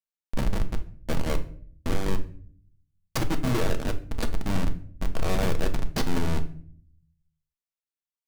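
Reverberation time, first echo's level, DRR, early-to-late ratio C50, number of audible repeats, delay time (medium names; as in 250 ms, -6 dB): 0.50 s, no echo, 6.0 dB, 14.0 dB, no echo, no echo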